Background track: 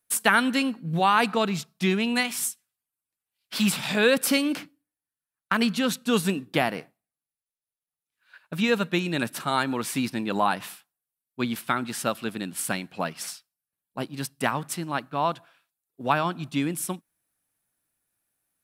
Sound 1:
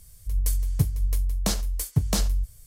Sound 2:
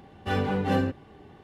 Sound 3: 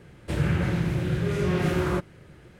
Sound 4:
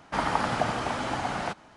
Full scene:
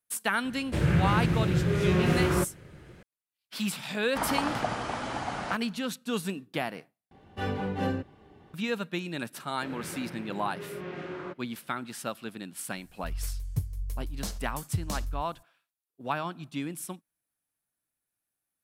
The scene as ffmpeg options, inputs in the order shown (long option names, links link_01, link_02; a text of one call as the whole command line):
ffmpeg -i bed.wav -i cue0.wav -i cue1.wav -i cue2.wav -i cue3.wav -filter_complex "[3:a]asplit=2[link_01][link_02];[0:a]volume=-8dB[link_03];[link_02]highpass=250,lowpass=3600[link_04];[1:a]equalizer=frequency=96:width=1.5:gain=5.5[link_05];[link_03]asplit=2[link_06][link_07];[link_06]atrim=end=7.114[link_08];[2:a]atrim=end=1.43,asetpts=PTS-STARTPTS,volume=-5dB[link_09];[link_07]atrim=start=8.536[link_10];[link_01]atrim=end=2.59,asetpts=PTS-STARTPTS,afade=type=in:duration=0.004:curve=hsin,afade=type=out:start_time=2.586:duration=0.004:curve=hsin,adelay=440[link_11];[4:a]atrim=end=1.76,asetpts=PTS-STARTPTS,volume=-3.5dB,afade=type=in:duration=0.004:curve=hsin,afade=type=out:start_time=1.756:duration=0.004:curve=hsin,adelay=4030[link_12];[link_04]atrim=end=2.59,asetpts=PTS-STARTPTS,volume=-10.5dB,afade=type=in:duration=0.004:curve=hsin,afade=type=out:start_time=2.586:duration=0.004:curve=hsin,adelay=9330[link_13];[link_05]atrim=end=2.66,asetpts=PTS-STARTPTS,volume=-11dB,afade=type=in:duration=0.004:curve=hsin,afade=type=out:start_time=2.656:duration=0.004:curve=hsin,adelay=12770[link_14];[link_08][link_09]acrossfade=duration=0.004:curve1=hsin:curve2=hsin[link_15];[link_15][link_10]acrossfade=duration=0.004:curve1=hsin:curve2=hsin[link_16];[link_16][link_11][link_12][link_13][link_14]amix=inputs=5:normalize=0" out.wav